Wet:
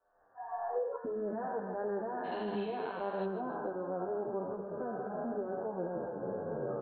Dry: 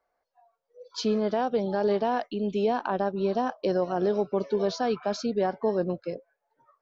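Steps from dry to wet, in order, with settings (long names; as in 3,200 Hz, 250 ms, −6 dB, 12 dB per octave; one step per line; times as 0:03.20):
peak hold with a decay on every bin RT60 2.52 s
camcorder AGC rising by 45 dB per second
Chebyshev low-pass filter 1,800 Hz, order 8, from 0:02.23 4,200 Hz, from 0:03.24 1,600 Hz
downward compressor 6 to 1, threshold −32 dBFS, peak gain reduction 13 dB
repeating echo 151 ms, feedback 40%, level −11.5 dB
barber-pole flanger 9.3 ms −1.7 Hz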